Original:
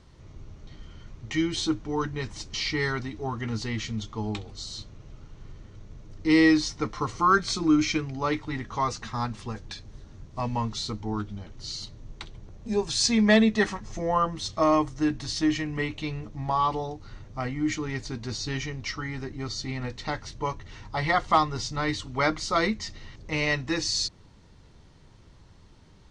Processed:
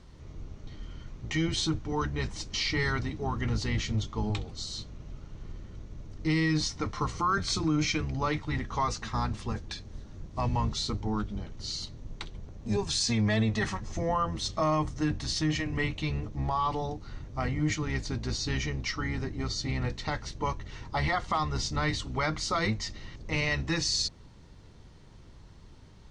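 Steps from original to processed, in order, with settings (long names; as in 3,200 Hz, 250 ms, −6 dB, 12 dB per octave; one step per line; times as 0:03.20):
sub-octave generator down 1 octave, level −1 dB
dynamic equaliser 340 Hz, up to −4 dB, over −33 dBFS, Q 0.84
brickwall limiter −19 dBFS, peak gain reduction 9.5 dB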